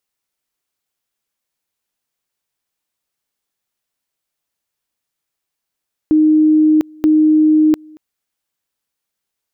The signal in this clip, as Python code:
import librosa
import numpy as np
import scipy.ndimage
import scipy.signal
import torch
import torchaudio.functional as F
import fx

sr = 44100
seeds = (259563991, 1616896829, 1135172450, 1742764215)

y = fx.two_level_tone(sr, hz=309.0, level_db=-7.5, drop_db=28.5, high_s=0.7, low_s=0.23, rounds=2)